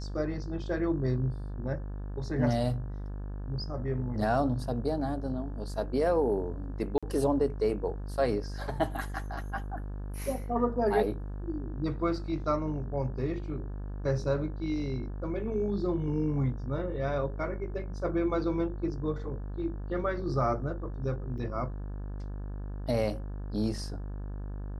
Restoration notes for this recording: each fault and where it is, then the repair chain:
buzz 50 Hz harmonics 35 -37 dBFS
6.98–7.03 gap 46 ms
21.38 gap 4.5 ms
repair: de-hum 50 Hz, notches 35; interpolate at 6.98, 46 ms; interpolate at 21.38, 4.5 ms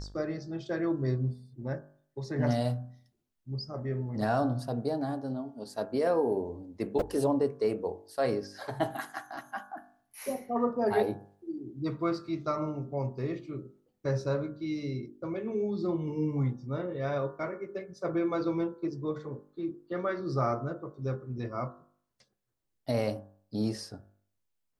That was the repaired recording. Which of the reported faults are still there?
none

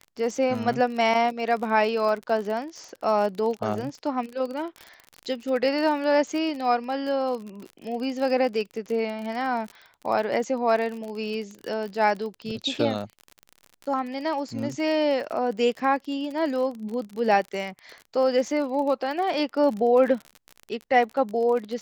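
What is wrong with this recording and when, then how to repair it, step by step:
crackle 39/s -31 dBFS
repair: de-click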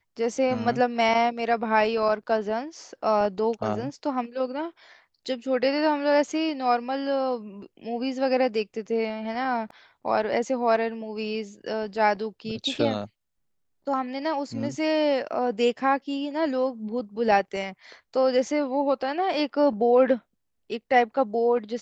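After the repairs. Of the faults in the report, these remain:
none

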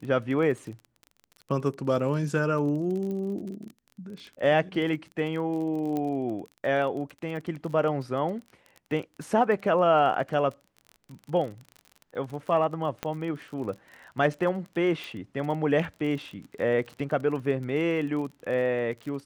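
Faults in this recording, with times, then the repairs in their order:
crackle 32/s -35 dBFS
3.11 pop -25 dBFS
5.97 pop -19 dBFS
13.03 pop -15 dBFS
15.04 pop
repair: de-click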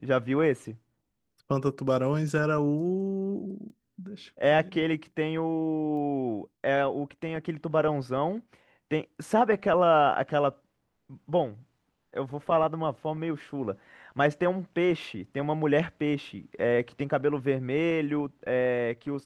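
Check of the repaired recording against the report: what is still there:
5.97 pop

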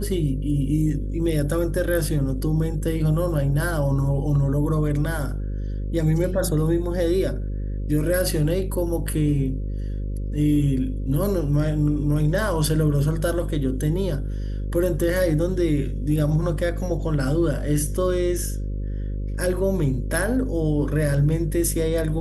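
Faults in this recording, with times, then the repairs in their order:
buzz 50 Hz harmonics 11 -27 dBFS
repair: de-hum 50 Hz, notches 11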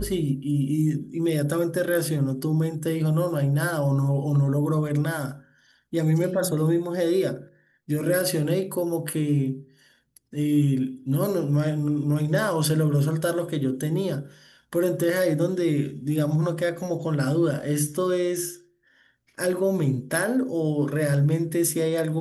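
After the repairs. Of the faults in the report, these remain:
none

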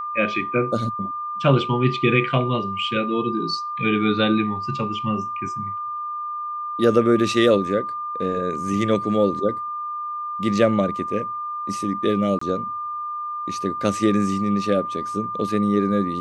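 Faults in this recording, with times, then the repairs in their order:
tone 1200 Hz -26 dBFS
12.39–12.41 gap 24 ms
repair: notch 1200 Hz, Q 30; interpolate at 12.39, 24 ms

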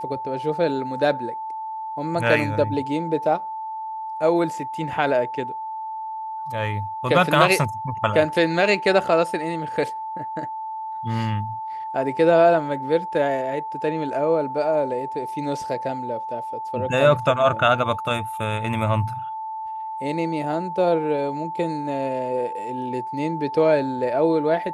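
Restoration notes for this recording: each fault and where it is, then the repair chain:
tone 880 Hz -28 dBFS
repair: notch 880 Hz, Q 30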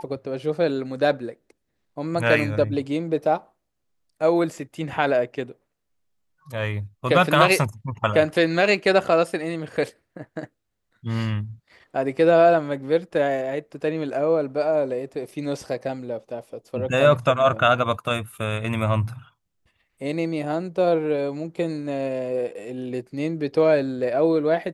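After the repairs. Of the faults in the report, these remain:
none

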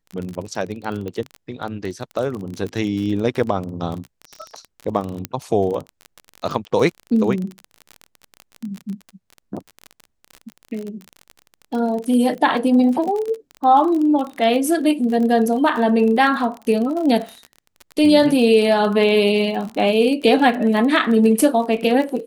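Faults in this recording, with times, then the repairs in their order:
crackle 29/s -25 dBFS
1.08 pop -18 dBFS
5.25 pop -9 dBFS
19.69 gap 4.7 ms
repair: de-click; interpolate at 19.69, 4.7 ms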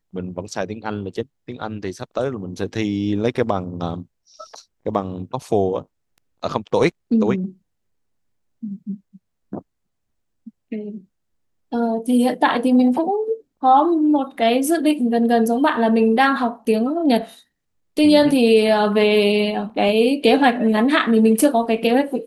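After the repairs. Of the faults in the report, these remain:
none

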